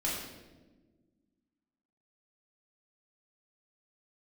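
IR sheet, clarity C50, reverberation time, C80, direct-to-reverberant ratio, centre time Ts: 1.5 dB, 1.3 s, 4.0 dB, -6.5 dB, 66 ms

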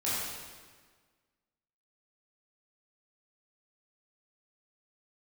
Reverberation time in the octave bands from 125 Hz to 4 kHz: 1.6 s, 1.7 s, 1.6 s, 1.5 s, 1.4 s, 1.3 s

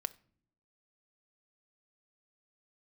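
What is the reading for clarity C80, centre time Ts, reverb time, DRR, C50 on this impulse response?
25.0 dB, 2 ms, no single decay rate, 11.0 dB, 20.0 dB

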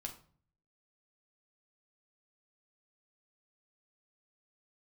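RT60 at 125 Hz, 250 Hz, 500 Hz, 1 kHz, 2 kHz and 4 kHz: 0.85 s, 0.65 s, 0.50 s, 0.45 s, 0.35 s, 0.35 s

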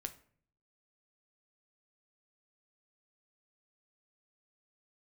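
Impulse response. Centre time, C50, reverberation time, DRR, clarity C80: 6 ms, 15.0 dB, 0.55 s, 7.0 dB, 19.5 dB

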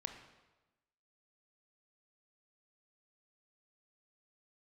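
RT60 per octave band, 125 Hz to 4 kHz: 1.2 s, 1.2 s, 1.1 s, 1.1 s, 1.0 s, 0.95 s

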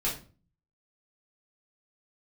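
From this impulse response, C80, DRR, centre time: 13.5 dB, -6.0 dB, 26 ms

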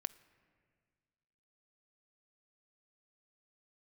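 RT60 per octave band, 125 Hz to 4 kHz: 2.0 s, 2.0 s, 1.9 s, 1.8 s, 1.8 s, 1.8 s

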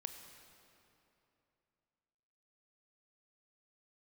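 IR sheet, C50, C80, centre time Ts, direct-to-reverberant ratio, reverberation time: 7.0 dB, 7.5 dB, 45 ms, 6.0 dB, 2.9 s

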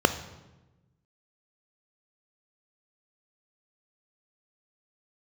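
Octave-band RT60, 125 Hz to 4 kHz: 1.6 s, 1.5 s, 1.2 s, 1.0 s, 0.90 s, 0.80 s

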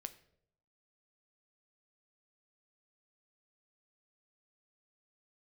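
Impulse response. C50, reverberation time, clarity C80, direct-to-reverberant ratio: 15.5 dB, 0.70 s, 18.5 dB, 9.5 dB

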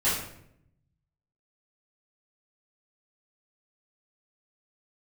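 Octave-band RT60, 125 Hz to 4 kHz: 1.4 s, 1.0 s, 0.85 s, 0.65 s, 0.65 s, 0.50 s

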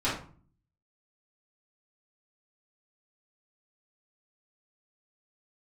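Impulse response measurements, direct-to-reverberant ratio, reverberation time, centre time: -10.5 dB, 0.45 s, 38 ms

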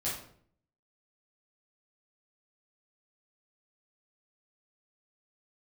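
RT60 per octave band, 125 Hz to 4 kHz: 0.80 s, 0.75 s, 0.65 s, 0.55 s, 0.45 s, 0.40 s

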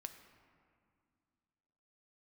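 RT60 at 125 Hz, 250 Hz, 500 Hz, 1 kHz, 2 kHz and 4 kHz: 2.7 s, 2.8 s, 2.3 s, 2.3 s, 1.9 s, 1.2 s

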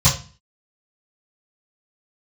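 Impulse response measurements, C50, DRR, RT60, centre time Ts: 9.0 dB, -12.5 dB, 0.35 s, 25 ms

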